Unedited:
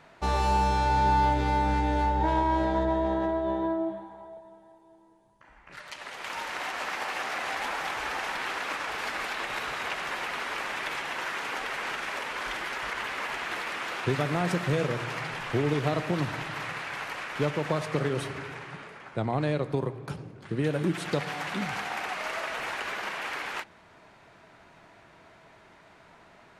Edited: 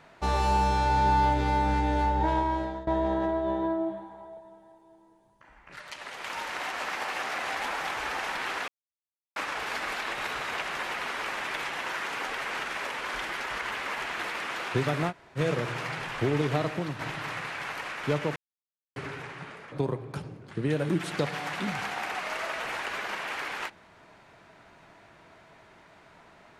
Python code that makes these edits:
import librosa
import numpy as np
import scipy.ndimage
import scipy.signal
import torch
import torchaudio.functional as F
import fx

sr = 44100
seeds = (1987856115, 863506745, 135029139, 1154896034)

y = fx.edit(x, sr, fx.fade_out_to(start_s=2.13, length_s=0.74, curve='qsin', floor_db=-18.5),
    fx.insert_silence(at_s=8.68, length_s=0.68),
    fx.room_tone_fill(start_s=14.42, length_s=0.28, crossfade_s=0.06),
    fx.fade_out_to(start_s=15.91, length_s=0.4, floor_db=-8.0),
    fx.silence(start_s=17.68, length_s=0.6),
    fx.cut(start_s=19.04, length_s=0.62), tone=tone)